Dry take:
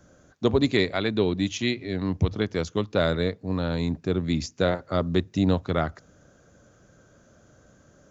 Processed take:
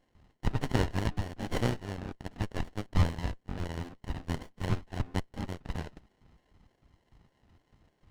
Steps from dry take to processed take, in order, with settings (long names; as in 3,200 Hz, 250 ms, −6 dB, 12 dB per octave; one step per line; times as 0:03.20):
in parallel at −6.5 dB: soft clipping −22.5 dBFS, distortion −9 dB
on the sum: loudspeaker in its box 240–3,300 Hz, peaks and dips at 380 Hz −6 dB, 640 Hz −3 dB, 1,100 Hz −9 dB, 1,700 Hz −3 dB, 2,500 Hz +4 dB
auto-filter high-pass square 3.3 Hz 610–2,500 Hz
ring modulation 520 Hz
windowed peak hold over 33 samples